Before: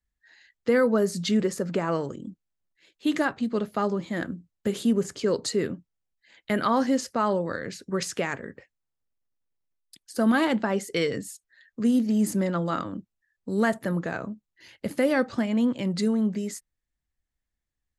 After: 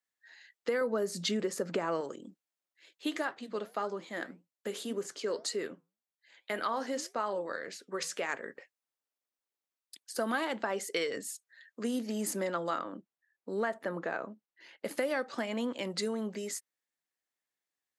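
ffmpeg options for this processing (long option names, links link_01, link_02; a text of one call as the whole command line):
ffmpeg -i in.wav -filter_complex "[0:a]asettb=1/sr,asplit=3[link_01][link_02][link_03];[link_01]atrim=end=0.814[link_04];[link_02]atrim=start=0.81:end=2.01,asetpts=PTS-STARTPTS,afade=type=in:duration=0.004:curve=qsin,afade=type=out:start_time=1.196:duration=0.004:curve=qsin,lowshelf=frequency=270:gain=10[link_05];[link_03]atrim=start=2.006[link_06];[link_04][link_05]acrossfade=duration=0.004:curve1=hsin:curve2=qsin[link_07];[link_07][link_06]acrossfade=duration=0.004:curve1=qsin:curve2=hsin,asplit=3[link_08][link_09][link_10];[link_08]afade=type=out:start_time=3.09:duration=0.02[link_11];[link_09]flanger=delay=4.2:depth=5.3:regen=-82:speed=1.8:shape=triangular,afade=type=in:start_time=3.09:duration=0.02,afade=type=out:start_time=8.28:duration=0.02[link_12];[link_10]afade=type=in:start_time=8.28:duration=0.02[link_13];[link_11][link_12][link_13]amix=inputs=3:normalize=0,asettb=1/sr,asplit=3[link_14][link_15][link_16];[link_14]atrim=end=12.784[link_17];[link_15]atrim=start=12.78:end=14.85,asetpts=PTS-STARTPTS,afade=type=in:duration=0.004:curve=qsin,afade=type=out:start_time=2.066:duration=0.004:curve=qsin,aemphasis=mode=reproduction:type=75kf[link_18];[link_16]atrim=start=14.846[link_19];[link_17][link_18]acrossfade=duration=0.004:curve1=hsin:curve2=qsin[link_20];[link_20][link_19]acrossfade=duration=0.004:curve1=qsin:curve2=hsin,highpass=430,acompressor=threshold=-29dB:ratio=4" out.wav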